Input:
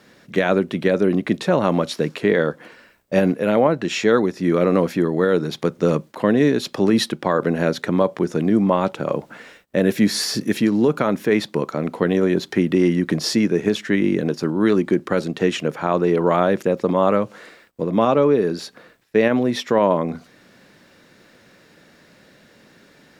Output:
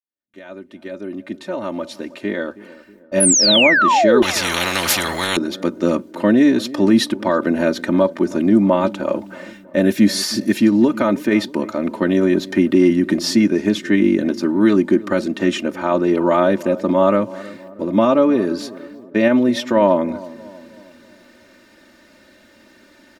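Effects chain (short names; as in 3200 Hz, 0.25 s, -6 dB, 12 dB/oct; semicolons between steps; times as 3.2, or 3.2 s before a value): opening faded in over 4.66 s; gate with hold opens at -47 dBFS; comb 3.3 ms, depth 89%; 3.2–4.25 painted sound fall 320–11000 Hz -13 dBFS; dynamic EQ 170 Hz, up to +5 dB, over -28 dBFS, Q 1.4; darkening echo 0.319 s, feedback 53%, low-pass 1100 Hz, level -17.5 dB; 4.22–5.37 spectral compressor 10:1; gain -1 dB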